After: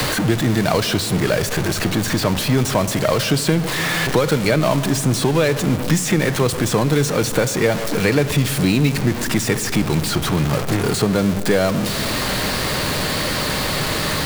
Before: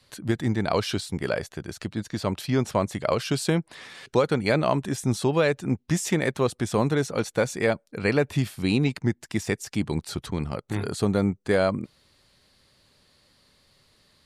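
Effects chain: zero-crossing step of -23 dBFS; shoebox room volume 2500 m³, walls mixed, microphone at 0.52 m; three-band squash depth 70%; gain +3 dB

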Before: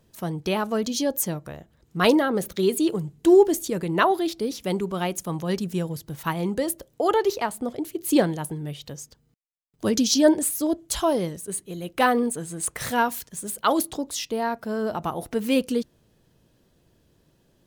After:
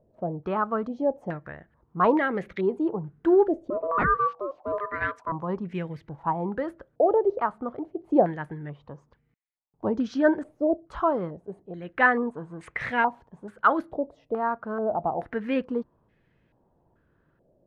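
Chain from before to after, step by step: 3.7–5.32 ring modulator 820 Hz; stepped low-pass 2.3 Hz 620–2100 Hz; gain -5 dB

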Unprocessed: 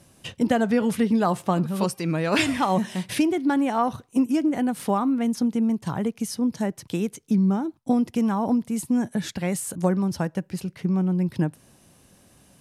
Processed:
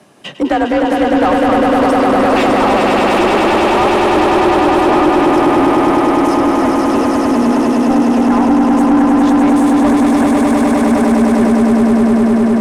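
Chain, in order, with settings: frequency shift +47 Hz; swelling echo 0.101 s, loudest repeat 8, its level -4 dB; overdrive pedal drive 23 dB, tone 1200 Hz, clips at -2 dBFS

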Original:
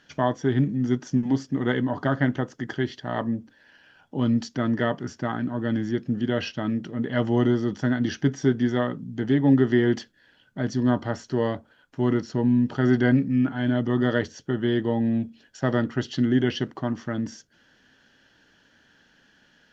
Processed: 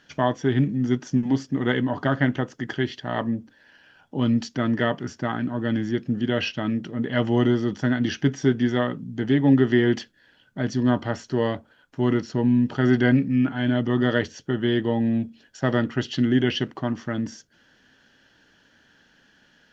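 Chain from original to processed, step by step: dynamic EQ 2600 Hz, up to +6 dB, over -49 dBFS, Q 1.9; gain +1 dB

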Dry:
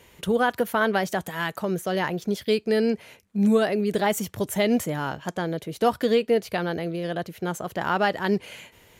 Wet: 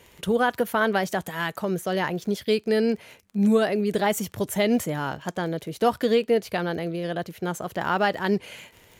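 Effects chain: crackle 24/s -37 dBFS

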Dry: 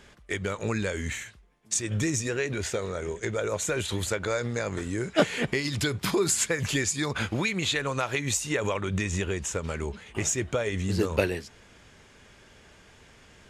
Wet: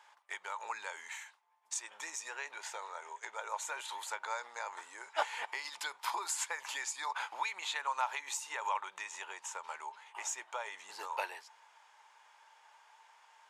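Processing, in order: ladder high-pass 850 Hz, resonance 80%; gain +1.5 dB

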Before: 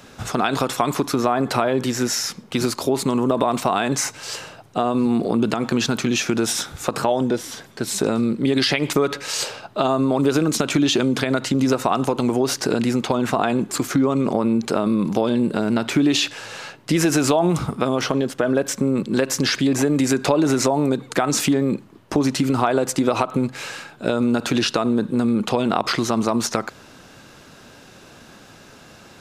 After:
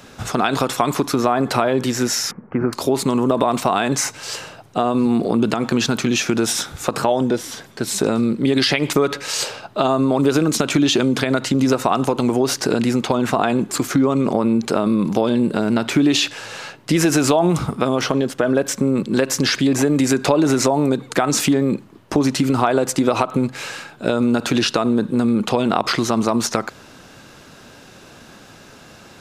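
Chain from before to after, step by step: 2.31–2.73 inverse Chebyshev low-pass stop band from 3500 Hz, stop band 40 dB; gain +2 dB

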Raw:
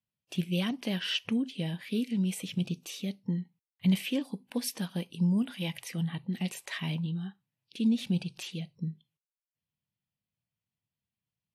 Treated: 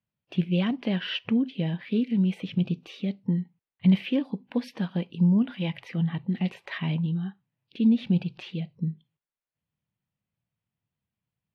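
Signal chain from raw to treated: air absorption 340 m; gain +6 dB

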